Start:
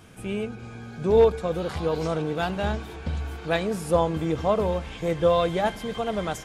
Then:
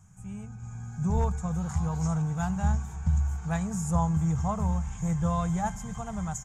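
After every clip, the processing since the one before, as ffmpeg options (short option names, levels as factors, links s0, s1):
-af "firequalizer=gain_entry='entry(170,0);entry(290,-24);entry(550,-24);entry(790,-8);entry(2900,-23);entry(4300,-23);entry(6800,6);entry(9700,-12)':delay=0.05:min_phase=1,dynaudnorm=f=260:g=5:m=2.37,volume=0.75"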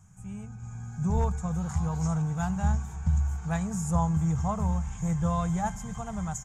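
-af anull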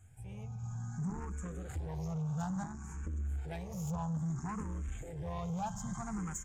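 -filter_complex "[0:a]acompressor=threshold=0.0398:ratio=10,asoftclip=type=tanh:threshold=0.0237,asplit=2[s0][s1];[s1]afreqshift=0.6[s2];[s0][s2]amix=inputs=2:normalize=1,volume=1.12"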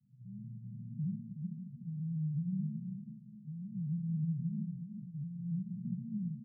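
-filter_complex "[0:a]asoftclip=type=tanh:threshold=0.0158,asuperpass=centerf=170:order=12:qfactor=1.5,asplit=2[s0][s1];[s1]aecho=0:1:371:0.447[s2];[s0][s2]amix=inputs=2:normalize=0,volume=1.68"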